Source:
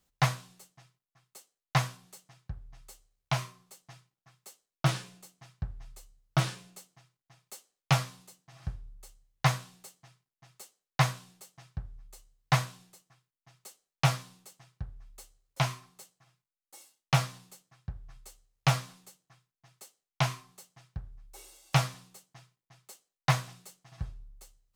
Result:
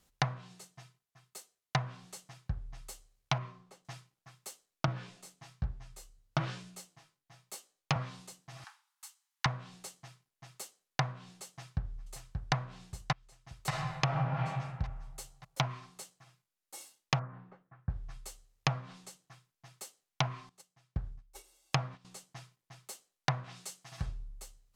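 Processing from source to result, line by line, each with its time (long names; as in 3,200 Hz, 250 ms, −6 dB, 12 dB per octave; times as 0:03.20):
0:00.38–0:01.87: notch comb filter 280 Hz
0:03.38–0:03.85: low-pass filter 1,300 Hz 6 dB per octave
0:04.86–0:07.96: chorus effect 1.1 Hz, delay 16 ms, depth 4.2 ms
0:08.64–0:09.46: Chebyshev high-pass filter 860 Hz, order 5
0:11.48–0:12.54: delay throw 580 ms, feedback 45%, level −6 dB
0:13.67–0:14.34: thrown reverb, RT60 1.4 s, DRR −2.5 dB
0:17.19–0:17.90: Chebyshev low-pass filter 1,600 Hz, order 3
0:20.49–0:22.05: noise gate −49 dBFS, range −16 dB
0:23.44–0:24.06: spectral tilt +1.5 dB per octave
whole clip: treble cut that deepens with the level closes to 1,300 Hz, closed at −24.5 dBFS; downward compressor 12 to 1, threshold −32 dBFS; level +5 dB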